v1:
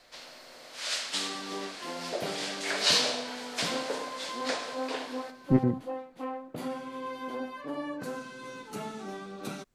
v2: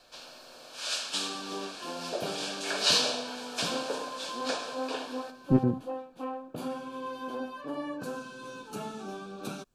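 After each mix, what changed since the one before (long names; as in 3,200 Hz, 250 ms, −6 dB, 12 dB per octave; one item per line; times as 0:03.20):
master: add Butterworth band-reject 2,000 Hz, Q 4.1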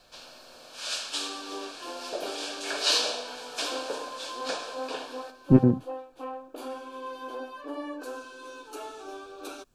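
speech +6.0 dB
second sound: add linear-phase brick-wall high-pass 260 Hz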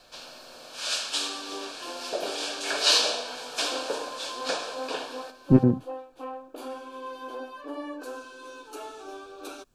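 first sound +3.5 dB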